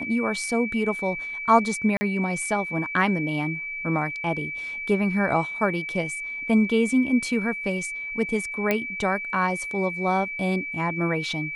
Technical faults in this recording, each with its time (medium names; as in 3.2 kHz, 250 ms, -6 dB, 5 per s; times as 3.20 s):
whine 2.3 kHz -30 dBFS
1.97–2.01 s: dropout 40 ms
8.71 s: pop -9 dBFS